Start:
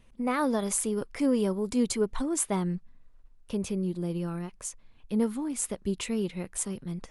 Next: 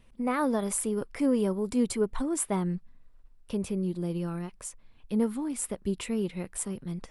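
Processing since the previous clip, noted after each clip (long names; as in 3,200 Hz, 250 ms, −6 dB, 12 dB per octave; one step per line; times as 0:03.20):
notch filter 6,500 Hz, Q 11
dynamic equaliser 4,600 Hz, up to −5 dB, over −49 dBFS, Q 0.85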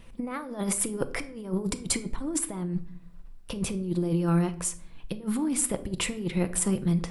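compressor whose output falls as the input rises −33 dBFS, ratio −0.5
rectangular room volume 850 cubic metres, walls furnished, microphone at 0.73 metres
level +4.5 dB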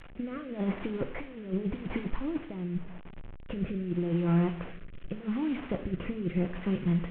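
linear delta modulator 16 kbit/s, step −38.5 dBFS
rotating-speaker cabinet horn 0.85 Hz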